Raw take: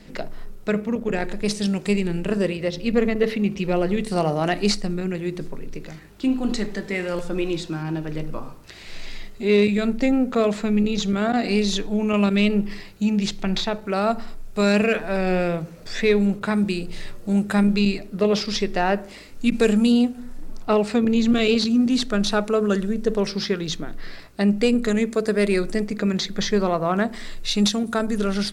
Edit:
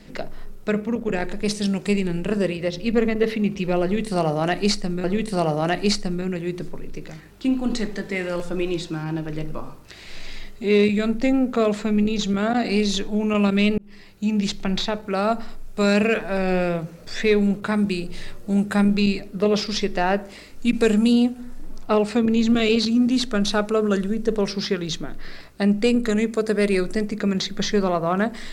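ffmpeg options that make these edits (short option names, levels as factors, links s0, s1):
-filter_complex "[0:a]asplit=3[s0][s1][s2];[s0]atrim=end=5.042[s3];[s1]atrim=start=3.828:end=12.57,asetpts=PTS-STARTPTS,afade=t=out:st=8.738:d=0.004:c=hsin[s4];[s2]atrim=start=12.57,asetpts=PTS-STARTPTS,afade=t=in:d=0.59[s5];[s4][s5]concat=n=2:v=0:a=1[s6];[s3][s6]acrossfade=d=0.004:c1=hsin:c2=hsin"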